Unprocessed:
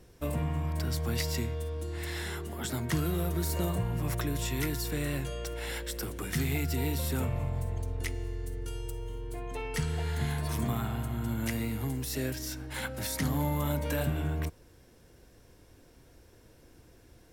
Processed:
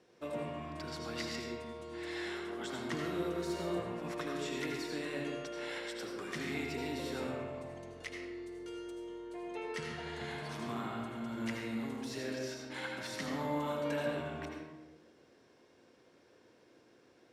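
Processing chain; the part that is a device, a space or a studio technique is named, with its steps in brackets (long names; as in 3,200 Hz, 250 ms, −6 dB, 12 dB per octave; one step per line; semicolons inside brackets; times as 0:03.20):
supermarket ceiling speaker (band-pass filter 280–5,200 Hz; convolution reverb RT60 1.2 s, pre-delay 73 ms, DRR 0 dB)
level −5 dB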